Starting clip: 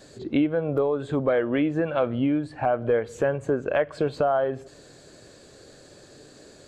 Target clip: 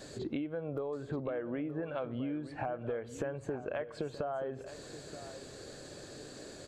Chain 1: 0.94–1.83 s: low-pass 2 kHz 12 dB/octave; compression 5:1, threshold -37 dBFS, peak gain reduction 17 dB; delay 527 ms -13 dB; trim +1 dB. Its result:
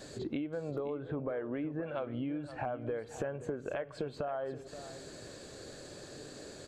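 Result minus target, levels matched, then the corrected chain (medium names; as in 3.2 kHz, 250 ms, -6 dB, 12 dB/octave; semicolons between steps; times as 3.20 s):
echo 400 ms early
0.94–1.83 s: low-pass 2 kHz 12 dB/octave; compression 5:1, threshold -37 dBFS, peak gain reduction 17 dB; delay 927 ms -13 dB; trim +1 dB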